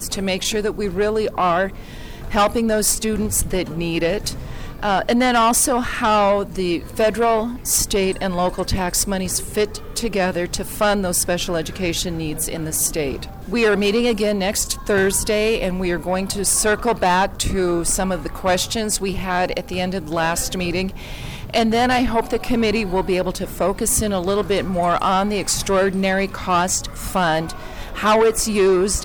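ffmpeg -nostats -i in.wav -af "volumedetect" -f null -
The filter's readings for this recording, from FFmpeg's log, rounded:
mean_volume: -19.8 dB
max_volume: -10.8 dB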